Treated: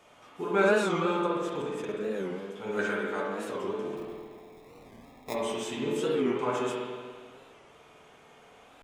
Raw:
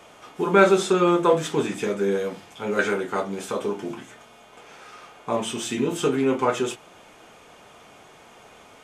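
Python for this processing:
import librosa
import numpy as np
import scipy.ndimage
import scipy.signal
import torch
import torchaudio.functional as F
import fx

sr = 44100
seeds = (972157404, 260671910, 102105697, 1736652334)

y = fx.level_steps(x, sr, step_db=12, at=(1.26, 2.17))
y = fx.sample_hold(y, sr, seeds[0], rate_hz=1500.0, jitter_pct=0, at=(3.96, 5.33), fade=0.02)
y = fx.comb_fb(y, sr, f0_hz=87.0, decay_s=1.2, harmonics='odd', damping=0.0, mix_pct=60)
y = fx.rev_spring(y, sr, rt60_s=1.8, pass_ms=(48, 55), chirp_ms=20, drr_db=-2.5)
y = fx.record_warp(y, sr, rpm=45.0, depth_cents=160.0)
y = y * librosa.db_to_amplitude(-3.0)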